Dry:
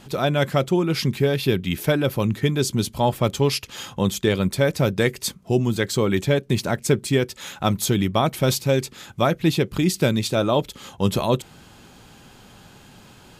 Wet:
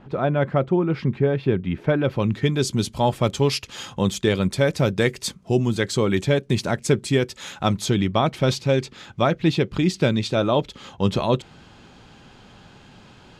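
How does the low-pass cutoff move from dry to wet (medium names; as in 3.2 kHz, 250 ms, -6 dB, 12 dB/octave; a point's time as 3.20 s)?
1.84 s 1.6 kHz
2.13 s 3.2 kHz
2.68 s 8.6 kHz
7.48 s 8.6 kHz
8.09 s 5 kHz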